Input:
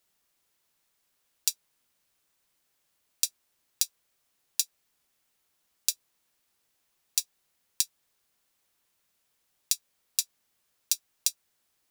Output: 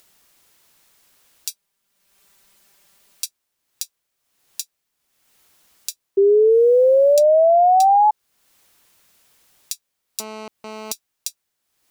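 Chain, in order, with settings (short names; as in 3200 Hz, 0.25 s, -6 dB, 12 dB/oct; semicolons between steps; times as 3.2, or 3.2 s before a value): 1.48–3.26 comb 5.1 ms, depth 78%; 7.18–7.82 high shelf 11000 Hz -10 dB; upward compressor, threshold -40 dBFS; 6.17–8.11 painted sound rise 390–860 Hz -11 dBFS; 10.2–10.92 GSM buzz -32 dBFS; gain -2 dB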